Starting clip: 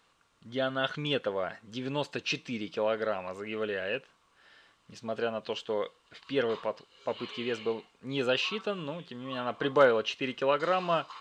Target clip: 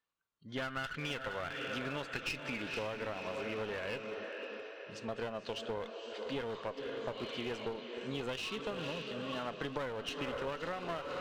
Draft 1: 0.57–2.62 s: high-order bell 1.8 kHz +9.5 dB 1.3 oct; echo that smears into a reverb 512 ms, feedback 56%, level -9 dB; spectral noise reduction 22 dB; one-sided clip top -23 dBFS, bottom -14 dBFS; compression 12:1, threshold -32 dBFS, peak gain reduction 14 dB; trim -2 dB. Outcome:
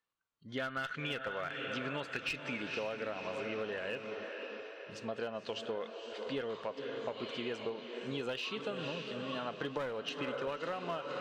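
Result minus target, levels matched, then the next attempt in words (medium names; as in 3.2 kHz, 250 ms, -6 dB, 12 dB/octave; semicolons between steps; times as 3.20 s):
one-sided clip: distortion -7 dB
0.57–2.62 s: high-order bell 1.8 kHz +9.5 dB 1.3 oct; echo that smears into a reverb 512 ms, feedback 56%, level -9 dB; spectral noise reduction 22 dB; one-sided clip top -34 dBFS, bottom -14 dBFS; compression 12:1, threshold -32 dBFS, peak gain reduction 13 dB; trim -2 dB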